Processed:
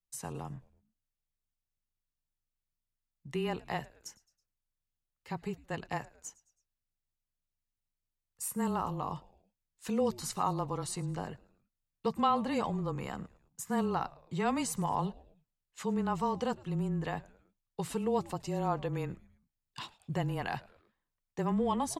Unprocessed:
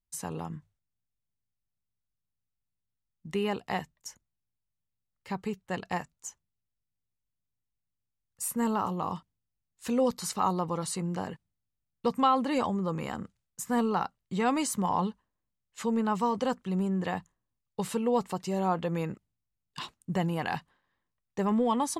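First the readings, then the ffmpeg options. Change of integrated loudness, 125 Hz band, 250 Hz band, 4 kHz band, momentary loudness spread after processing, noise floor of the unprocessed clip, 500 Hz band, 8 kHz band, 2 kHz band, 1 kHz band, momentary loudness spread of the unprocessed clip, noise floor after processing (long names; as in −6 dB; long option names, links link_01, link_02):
−4.0 dB, −1.0 dB, −4.5 dB, −4.0 dB, 15 LU, −85 dBFS, −4.0 dB, −4.0 dB, −4.0 dB, −4.0 dB, 15 LU, below −85 dBFS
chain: -filter_complex "[0:a]asplit=4[link_01][link_02][link_03][link_04];[link_02]adelay=108,afreqshift=-130,volume=-22dB[link_05];[link_03]adelay=216,afreqshift=-260,volume=-28.4dB[link_06];[link_04]adelay=324,afreqshift=-390,volume=-34.8dB[link_07];[link_01][link_05][link_06][link_07]amix=inputs=4:normalize=0,afreqshift=-20,volume=-4dB"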